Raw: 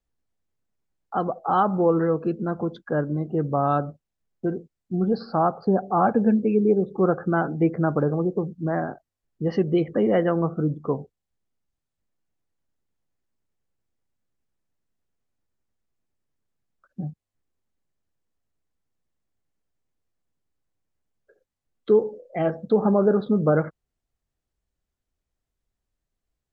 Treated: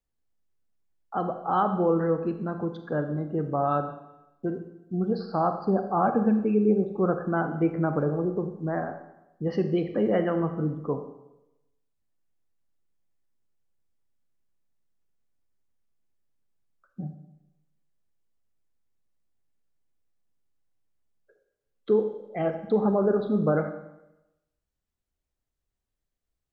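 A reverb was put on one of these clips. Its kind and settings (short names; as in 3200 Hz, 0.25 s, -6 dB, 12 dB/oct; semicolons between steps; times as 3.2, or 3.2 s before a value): Schroeder reverb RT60 0.92 s, combs from 30 ms, DRR 7.5 dB; gain -4 dB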